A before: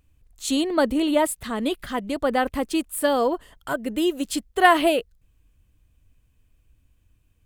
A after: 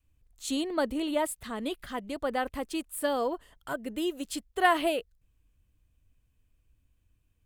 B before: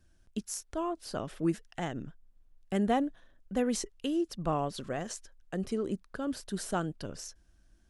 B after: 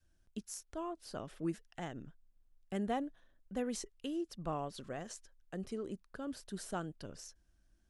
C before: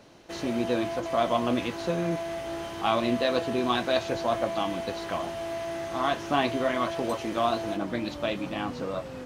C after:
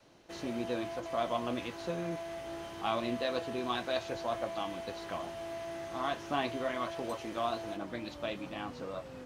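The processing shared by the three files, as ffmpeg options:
-af "adynamicequalizer=threshold=0.0126:dfrequency=200:dqfactor=0.86:tfrequency=200:tqfactor=0.86:attack=5:release=100:ratio=0.375:range=2:mode=cutabove:tftype=bell,volume=-7.5dB"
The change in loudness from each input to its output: -8.0, -8.0, -8.0 LU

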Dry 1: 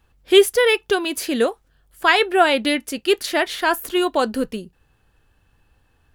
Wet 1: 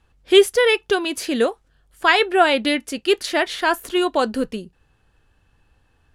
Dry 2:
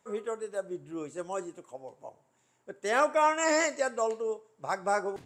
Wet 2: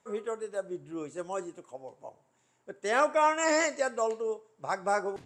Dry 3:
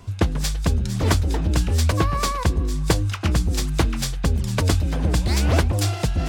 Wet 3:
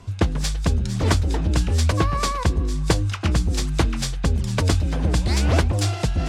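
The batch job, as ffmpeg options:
-af "lowpass=10k"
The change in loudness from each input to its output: 0.0, 0.0, 0.0 LU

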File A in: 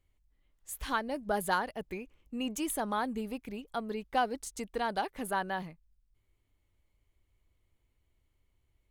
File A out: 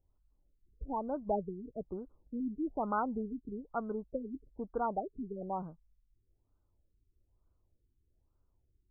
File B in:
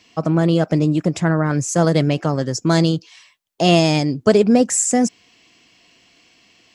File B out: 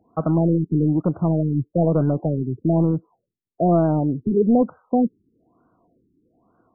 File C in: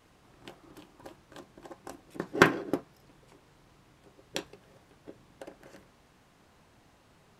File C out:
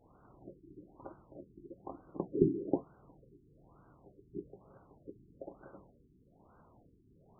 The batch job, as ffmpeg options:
-af "lowpass=f=2.8k:t=q:w=1.7,acontrast=75,afftfilt=real='re*lt(b*sr/1024,410*pow(1600/410,0.5+0.5*sin(2*PI*1.1*pts/sr)))':imag='im*lt(b*sr/1024,410*pow(1600/410,0.5+0.5*sin(2*PI*1.1*pts/sr)))':win_size=1024:overlap=0.75,volume=-7.5dB"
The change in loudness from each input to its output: -3.5, -3.5, -8.0 LU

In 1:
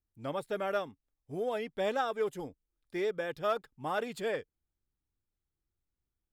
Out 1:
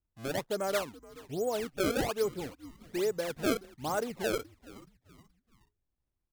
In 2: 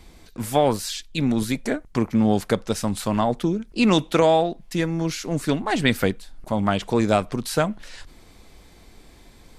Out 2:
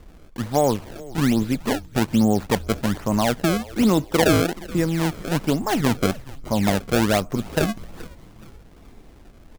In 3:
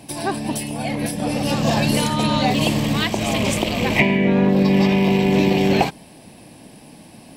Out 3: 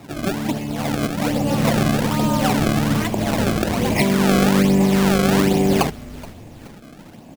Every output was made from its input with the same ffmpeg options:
-filter_complex "[0:a]lowpass=f=1.3k:p=1,asplit=2[a][b];[b]alimiter=limit=-14dB:level=0:latency=1,volume=-1dB[c];[a][c]amix=inputs=2:normalize=0,acrusher=samples=27:mix=1:aa=0.000001:lfo=1:lforange=43.2:lforate=1.2,asplit=4[d][e][f][g];[e]adelay=425,afreqshift=-140,volume=-19.5dB[h];[f]adelay=850,afreqshift=-280,volume=-26.8dB[i];[g]adelay=1275,afreqshift=-420,volume=-34.2dB[j];[d][h][i][j]amix=inputs=4:normalize=0,volume=-3dB"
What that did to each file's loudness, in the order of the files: +1.5, +1.0, 0.0 LU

